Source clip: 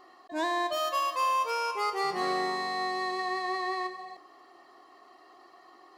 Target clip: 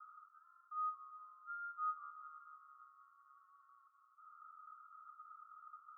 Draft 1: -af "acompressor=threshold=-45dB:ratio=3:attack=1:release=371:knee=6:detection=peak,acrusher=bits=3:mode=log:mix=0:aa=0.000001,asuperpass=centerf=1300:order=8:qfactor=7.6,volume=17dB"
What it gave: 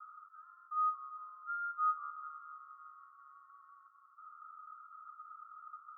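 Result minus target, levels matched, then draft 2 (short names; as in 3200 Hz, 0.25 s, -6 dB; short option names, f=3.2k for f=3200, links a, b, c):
compressor: peak gain reduction -7.5 dB
-af "acompressor=threshold=-56.5dB:ratio=3:attack=1:release=371:knee=6:detection=peak,acrusher=bits=3:mode=log:mix=0:aa=0.000001,asuperpass=centerf=1300:order=8:qfactor=7.6,volume=17dB"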